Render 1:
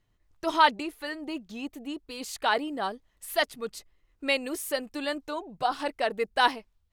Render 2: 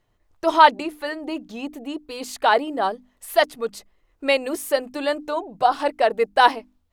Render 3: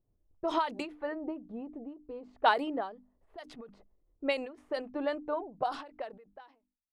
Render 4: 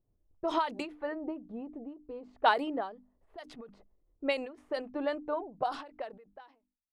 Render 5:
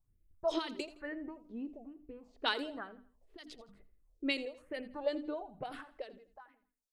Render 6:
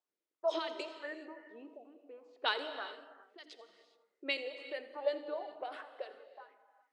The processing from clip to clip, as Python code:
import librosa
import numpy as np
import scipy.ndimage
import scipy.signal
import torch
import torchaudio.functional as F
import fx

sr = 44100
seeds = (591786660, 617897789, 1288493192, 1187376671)

y1 = fx.peak_eq(x, sr, hz=650.0, db=7.0, octaves=2.0)
y1 = fx.hum_notches(y1, sr, base_hz=50, count=6)
y1 = y1 * librosa.db_to_amplitude(3.0)
y2 = fx.fade_out_tail(y1, sr, length_s=1.06)
y2 = fx.env_lowpass(y2, sr, base_hz=410.0, full_db=-13.0)
y2 = fx.end_taper(y2, sr, db_per_s=130.0)
y2 = y2 * librosa.db_to_amplitude(-5.5)
y3 = y2
y4 = fx.phaser_stages(y3, sr, stages=4, low_hz=120.0, high_hz=1000.0, hz=1.1, feedback_pct=50)
y4 = fx.echo_feedback(y4, sr, ms=83, feedback_pct=35, wet_db=-16.5)
y5 = scipy.signal.sosfilt(scipy.signal.butter(4, 400.0, 'highpass', fs=sr, output='sos'), y4)
y5 = fx.air_absorb(y5, sr, metres=70.0)
y5 = fx.rev_gated(y5, sr, seeds[0], gate_ms=440, shape='flat', drr_db=9.5)
y5 = y5 * librosa.db_to_amplitude(1.0)